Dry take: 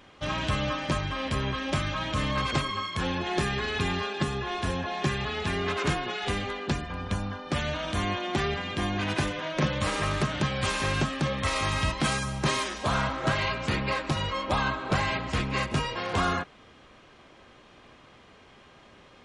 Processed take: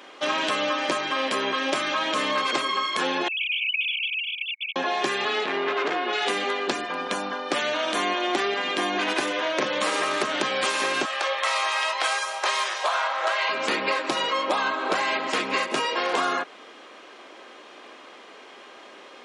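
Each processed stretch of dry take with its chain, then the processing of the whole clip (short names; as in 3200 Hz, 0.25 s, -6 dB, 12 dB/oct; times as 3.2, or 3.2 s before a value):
3.28–4.76 sine-wave speech + brick-wall FIR high-pass 2200 Hz
5.44–6.13 HPF 150 Hz + air absorption 180 m + core saturation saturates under 1000 Hz
11.05–13.49 HPF 580 Hz 24 dB/oct + high shelf 8200 Hz -8.5 dB + doubler 20 ms -10.5 dB
whole clip: HPF 300 Hz 24 dB/oct; compressor, threshold -30 dBFS; gain +9 dB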